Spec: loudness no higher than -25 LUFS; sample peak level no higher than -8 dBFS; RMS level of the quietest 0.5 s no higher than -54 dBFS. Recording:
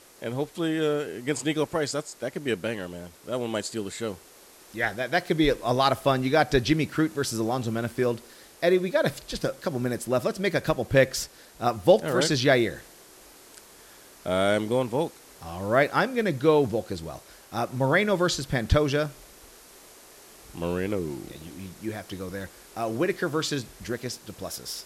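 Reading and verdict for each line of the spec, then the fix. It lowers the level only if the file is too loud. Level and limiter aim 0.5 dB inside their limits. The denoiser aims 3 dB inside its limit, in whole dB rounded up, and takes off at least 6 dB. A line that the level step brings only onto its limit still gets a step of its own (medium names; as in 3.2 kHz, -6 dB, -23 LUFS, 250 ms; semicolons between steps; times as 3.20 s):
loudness -26.5 LUFS: pass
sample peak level -6.5 dBFS: fail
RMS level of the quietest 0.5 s -52 dBFS: fail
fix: noise reduction 6 dB, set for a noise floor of -52 dBFS; peak limiter -8.5 dBFS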